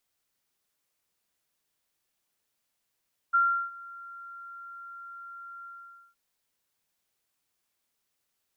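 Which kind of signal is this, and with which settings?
ADSR sine 1.38 kHz, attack 19 ms, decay 353 ms, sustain -22.5 dB, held 2.32 s, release 497 ms -18.5 dBFS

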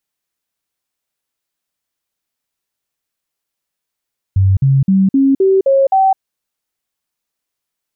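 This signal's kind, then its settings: stepped sine 96.1 Hz up, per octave 2, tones 7, 0.21 s, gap 0.05 s -7.5 dBFS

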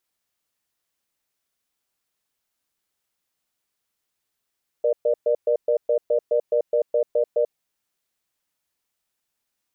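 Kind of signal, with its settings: cadence 476 Hz, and 599 Hz, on 0.09 s, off 0.12 s, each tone -19.5 dBFS 2.72 s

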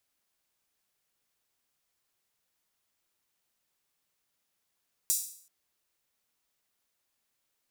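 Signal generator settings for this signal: open hi-hat length 0.38 s, high-pass 6.9 kHz, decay 0.55 s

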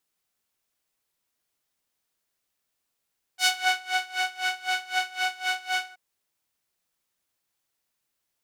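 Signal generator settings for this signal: synth patch with tremolo F#5, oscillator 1 saw, sub -23.5 dB, noise -12 dB, filter bandpass, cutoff 1.3 kHz, Q 0.79, attack 108 ms, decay 0.26 s, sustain -10 dB, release 0.09 s, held 2.49 s, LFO 3.9 Hz, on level 21.5 dB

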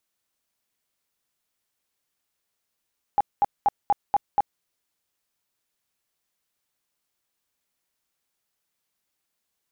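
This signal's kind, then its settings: tone bursts 815 Hz, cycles 21, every 0.24 s, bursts 6, -15 dBFS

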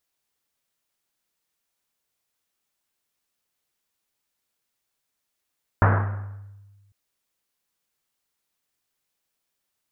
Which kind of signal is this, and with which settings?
Risset drum, pitch 100 Hz, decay 1.54 s, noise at 990 Hz, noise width 1.3 kHz, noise 35%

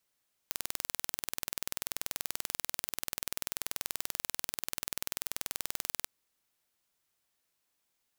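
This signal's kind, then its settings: pulse train 20.6 per s, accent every 0, -6 dBFS 5.54 s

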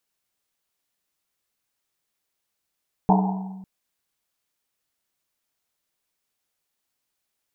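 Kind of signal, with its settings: Risset drum length 0.55 s, pitch 190 Hz, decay 1.48 s, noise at 820 Hz, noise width 280 Hz, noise 40%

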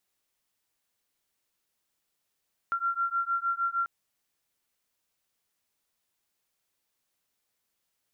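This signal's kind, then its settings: beating tones 1.37 kHz, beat 6.5 Hz, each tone -29.5 dBFS 1.14 s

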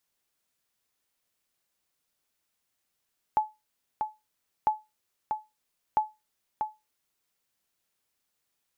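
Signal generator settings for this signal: sonar ping 859 Hz, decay 0.22 s, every 1.30 s, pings 3, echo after 0.64 s, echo -6 dB -15.5 dBFS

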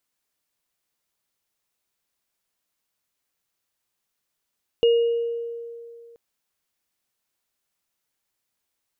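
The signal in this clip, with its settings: sine partials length 1.33 s, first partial 467 Hz, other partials 2.86 kHz, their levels -13 dB, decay 2.43 s, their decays 0.85 s, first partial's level -13 dB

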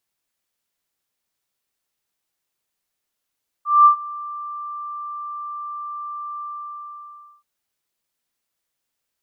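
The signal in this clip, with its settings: ADSR sine 1.18 kHz, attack 204 ms, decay 101 ms, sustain -22 dB, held 2.76 s, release 1020 ms -6 dBFS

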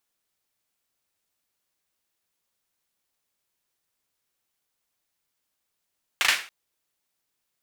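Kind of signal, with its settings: hand clap length 0.28 s, bursts 3, apart 37 ms, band 2.1 kHz, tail 0.36 s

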